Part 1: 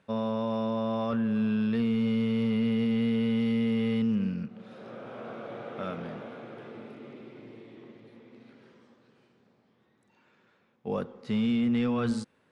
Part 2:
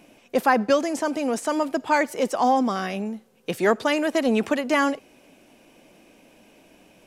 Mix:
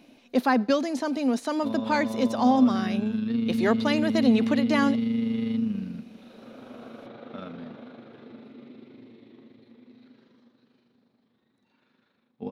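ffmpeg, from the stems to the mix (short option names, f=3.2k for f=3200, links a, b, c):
-filter_complex "[0:a]tremolo=f=25:d=0.462,adelay=1550,volume=-3.5dB[a];[1:a]volume=-5dB[b];[a][b]amix=inputs=2:normalize=0,equalizer=f=250:t=o:w=0.33:g=11,equalizer=f=4k:t=o:w=0.33:g=11,equalizer=f=8k:t=o:w=0.33:g=-9,equalizer=f=12.5k:t=o:w=0.33:g=-6"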